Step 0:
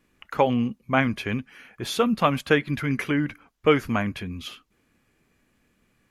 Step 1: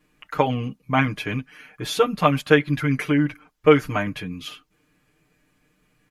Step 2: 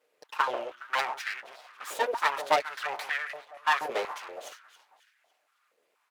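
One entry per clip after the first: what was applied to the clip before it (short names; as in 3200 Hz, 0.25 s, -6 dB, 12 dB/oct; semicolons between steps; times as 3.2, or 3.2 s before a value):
comb 6.6 ms, depth 99%; gain -1 dB
echo with dull and thin repeats by turns 0.138 s, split 1200 Hz, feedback 62%, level -12 dB; full-wave rectifier; stepped high-pass 4.2 Hz 490–1700 Hz; gain -7 dB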